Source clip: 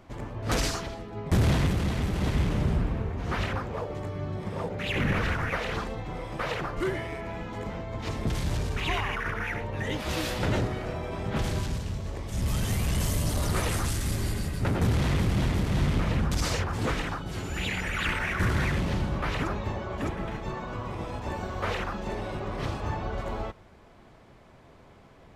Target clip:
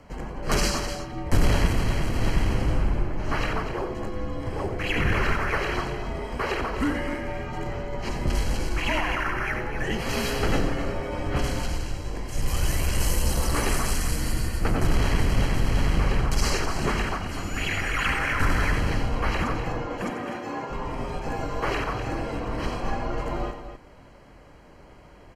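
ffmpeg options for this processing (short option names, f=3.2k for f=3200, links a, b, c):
-filter_complex "[0:a]asettb=1/sr,asplit=3[a][b][c];[a]atrim=end=19.854[d];[b]atrim=start=19.85:end=20.7,asetpts=PTS-STARTPTS,afade=t=in:d=0.004:c=qsin,afade=t=out:st=0.846:d=0.004:c=qsin,highpass=f=270:w=0.5412,highpass=f=270:w=1.3066[e];[c]atrim=start=20.696[f];[d][e]acrossfade=d=0.004:c1=hsin:c2=qsin[g];[g][f]acrossfade=d=0.004:c1=qsin:c2=hsin,afreqshift=-87,asuperstop=centerf=3600:order=20:qfactor=7,aecho=1:1:90.38|250.7:0.316|0.316,volume=3.5dB"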